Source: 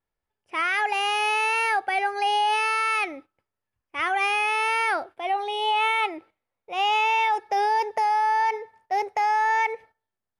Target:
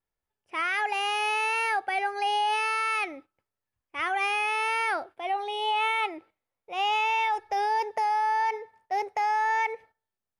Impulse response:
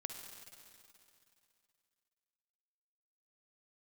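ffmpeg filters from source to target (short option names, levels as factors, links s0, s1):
-filter_complex "[0:a]asplit=3[s0][s1][s2];[s0]afade=t=out:st=6.94:d=0.02[s3];[s1]asubboost=boost=7.5:cutoff=73,afade=t=in:st=6.94:d=0.02,afade=t=out:st=7.69:d=0.02[s4];[s2]afade=t=in:st=7.69:d=0.02[s5];[s3][s4][s5]amix=inputs=3:normalize=0,volume=0.668"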